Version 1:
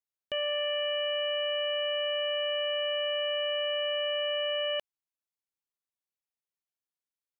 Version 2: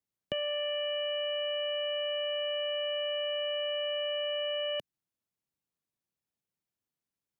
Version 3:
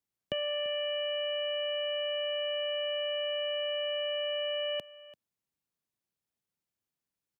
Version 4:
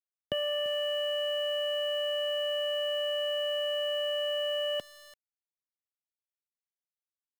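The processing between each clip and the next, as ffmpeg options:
-filter_complex "[0:a]equalizer=f=150:w=0.42:g=14,acrossover=split=300|3000[s0][s1][s2];[s1]acompressor=threshold=0.0224:ratio=6[s3];[s0][s3][s2]amix=inputs=3:normalize=0"
-af "aecho=1:1:340:0.119"
-af "aeval=exprs='val(0)*gte(abs(val(0)),0.00447)':c=same,asuperstop=centerf=2500:order=8:qfactor=5,volume=1.26"

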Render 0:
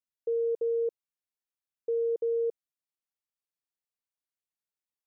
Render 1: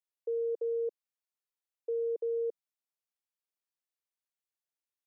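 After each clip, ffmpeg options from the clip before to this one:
-af "highpass=f=350:w=0.5412,highpass=f=350:w=1.3066,volume=0.668"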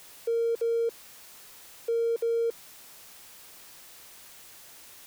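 -af "aeval=exprs='val(0)+0.5*0.00596*sgn(val(0))':c=same,volume=1.68"

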